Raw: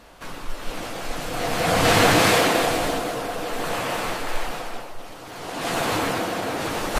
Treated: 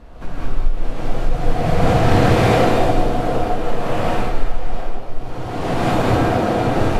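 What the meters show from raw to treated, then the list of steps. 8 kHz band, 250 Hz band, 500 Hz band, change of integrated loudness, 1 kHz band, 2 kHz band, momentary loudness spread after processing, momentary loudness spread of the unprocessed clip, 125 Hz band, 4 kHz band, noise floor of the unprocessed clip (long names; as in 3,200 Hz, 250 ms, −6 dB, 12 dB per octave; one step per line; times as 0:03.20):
−9.0 dB, +7.0 dB, +5.0 dB, +3.5 dB, +3.5 dB, −2.5 dB, 16 LU, 20 LU, +11.5 dB, −5.0 dB, −39 dBFS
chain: spectral tilt −3.5 dB per octave
downward compressor 2.5 to 1, threshold −18 dBFS, peak gain reduction 13 dB
reverb whose tail is shaped and stops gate 240 ms rising, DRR −7 dB
level −1.5 dB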